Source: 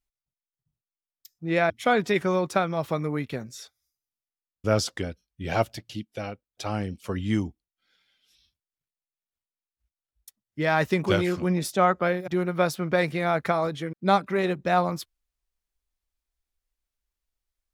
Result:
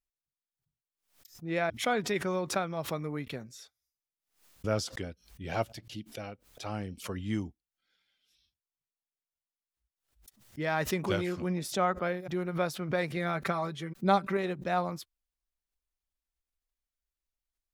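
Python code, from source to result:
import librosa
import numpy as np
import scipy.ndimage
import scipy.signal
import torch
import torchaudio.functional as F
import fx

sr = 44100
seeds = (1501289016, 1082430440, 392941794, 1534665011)

y = fx.comb(x, sr, ms=5.2, depth=0.56, at=(13.16, 14.37))
y = fx.pre_swell(y, sr, db_per_s=140.0)
y = y * librosa.db_to_amplitude(-7.5)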